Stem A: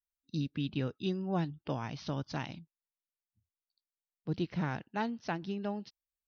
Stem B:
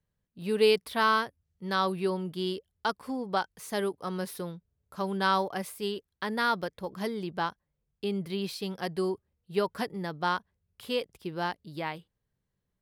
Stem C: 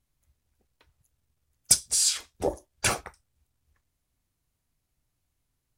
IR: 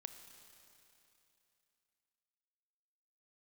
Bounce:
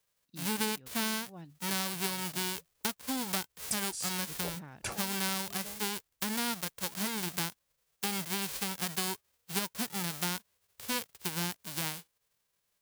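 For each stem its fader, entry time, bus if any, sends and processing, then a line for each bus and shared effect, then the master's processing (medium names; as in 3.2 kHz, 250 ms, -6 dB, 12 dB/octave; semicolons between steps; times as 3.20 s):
-14.0 dB, 0.00 s, no send, none
+2.5 dB, 0.00 s, no send, formants flattened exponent 0.1
-12.0 dB, 2.00 s, no send, local Wiener filter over 25 samples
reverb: none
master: compression 5:1, threshold -30 dBFS, peak gain reduction 14.5 dB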